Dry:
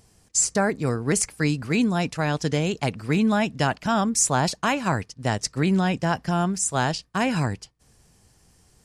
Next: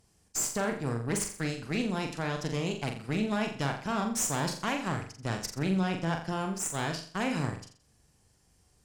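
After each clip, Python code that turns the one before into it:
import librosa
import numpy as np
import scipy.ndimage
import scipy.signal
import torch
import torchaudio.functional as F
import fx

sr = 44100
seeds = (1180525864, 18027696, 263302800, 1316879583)

y = fx.tube_stage(x, sr, drive_db=18.0, bias=0.7)
y = fx.room_flutter(y, sr, wall_m=7.3, rt60_s=0.45)
y = y * librosa.db_to_amplitude(-5.5)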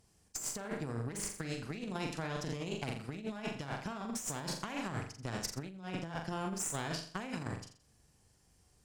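y = fx.over_compress(x, sr, threshold_db=-33.0, ratio=-0.5)
y = y * librosa.db_to_amplitude(-5.0)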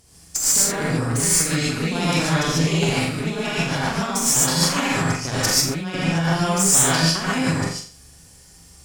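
y = fx.high_shelf(x, sr, hz=2800.0, db=7.5)
y = fx.rev_gated(y, sr, seeds[0], gate_ms=170, shape='rising', drr_db=-7.5)
y = y * librosa.db_to_amplitude(9.0)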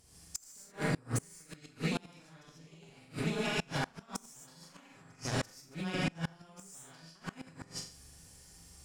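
y = fx.gate_flip(x, sr, shuts_db=-12.0, range_db=-28)
y = y * librosa.db_to_amplitude(-8.5)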